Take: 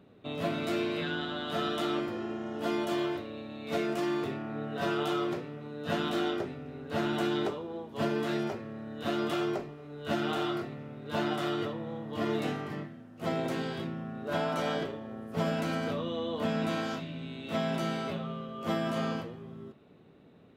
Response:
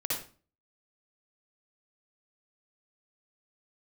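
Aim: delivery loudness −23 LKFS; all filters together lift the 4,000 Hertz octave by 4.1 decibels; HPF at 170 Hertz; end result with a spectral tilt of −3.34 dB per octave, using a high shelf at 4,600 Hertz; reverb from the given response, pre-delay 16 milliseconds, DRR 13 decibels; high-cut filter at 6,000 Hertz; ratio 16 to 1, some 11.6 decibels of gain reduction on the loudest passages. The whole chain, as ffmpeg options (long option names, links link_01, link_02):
-filter_complex "[0:a]highpass=170,lowpass=6000,equalizer=frequency=4000:width_type=o:gain=4,highshelf=frequency=4600:gain=4,acompressor=threshold=-38dB:ratio=16,asplit=2[link_01][link_02];[1:a]atrim=start_sample=2205,adelay=16[link_03];[link_02][link_03]afir=irnorm=-1:irlink=0,volume=-18.5dB[link_04];[link_01][link_04]amix=inputs=2:normalize=0,volume=19dB"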